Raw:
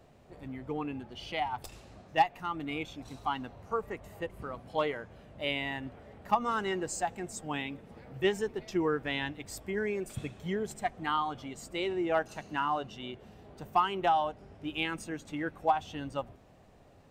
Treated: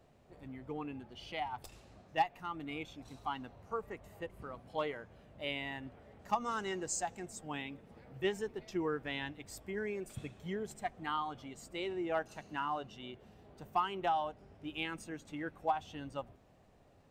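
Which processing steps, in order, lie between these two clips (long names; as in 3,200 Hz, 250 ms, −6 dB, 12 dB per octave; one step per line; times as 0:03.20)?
0:06.19–0:07.26: parametric band 6,400 Hz +9 dB 0.83 octaves
level −6 dB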